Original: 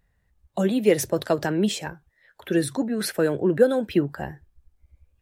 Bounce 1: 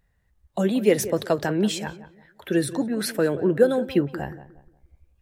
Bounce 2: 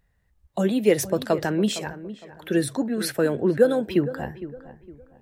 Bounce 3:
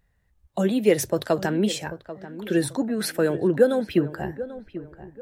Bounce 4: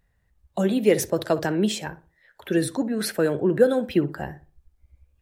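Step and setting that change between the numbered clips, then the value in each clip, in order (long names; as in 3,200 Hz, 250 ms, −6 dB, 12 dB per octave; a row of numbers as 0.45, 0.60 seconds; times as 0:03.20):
feedback echo with a low-pass in the loop, delay time: 179, 460, 789, 61 milliseconds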